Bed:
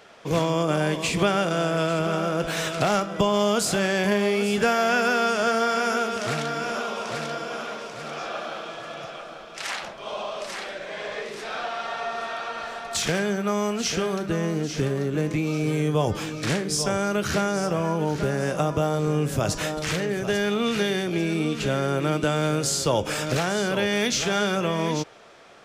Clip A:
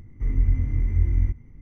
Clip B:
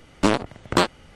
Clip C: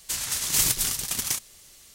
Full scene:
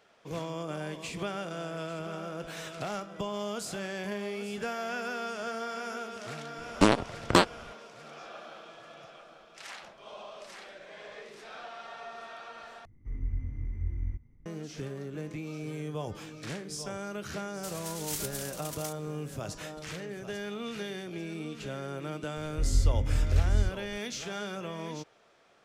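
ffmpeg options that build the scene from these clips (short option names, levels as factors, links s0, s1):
-filter_complex "[1:a]asplit=2[s0][s1];[0:a]volume=0.211,asplit=2[s2][s3];[s2]atrim=end=12.854[s4];[s0]atrim=end=1.61,asetpts=PTS-STARTPTS,volume=0.237[s5];[s3]atrim=start=14.456[s6];[2:a]atrim=end=1.15,asetpts=PTS-STARTPTS,volume=0.75,afade=t=in:d=0.004:c=hsin,afade=t=out:st=1.146:d=0.004:c=hsin,adelay=290178S[s7];[3:a]atrim=end=1.94,asetpts=PTS-STARTPTS,volume=0.2,afade=t=in:d=0.004:c=hsin,afade=t=out:st=1.936:d=0.004:c=hsin,adelay=17540[s8];[s1]atrim=end=1.61,asetpts=PTS-STARTPTS,volume=0.631,afade=t=in:d=0.004:c=hsin,afade=t=out:st=1.606:d=0.004:c=hsin,adelay=22370[s9];[s4][s5]acrossfade=d=0.004:c1=hsin:c2=hsin[s10];[s10][s6]acrossfade=d=0.004:c1=hsin:c2=hsin[s11];[s11][s7][s8][s9]amix=inputs=4:normalize=0"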